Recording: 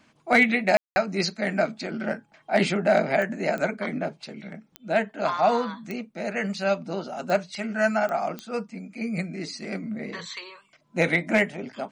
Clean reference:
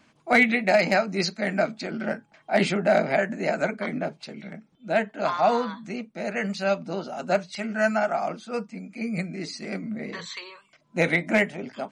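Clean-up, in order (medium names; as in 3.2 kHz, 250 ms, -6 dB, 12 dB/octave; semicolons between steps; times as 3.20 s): de-click; room tone fill 0.77–0.96 s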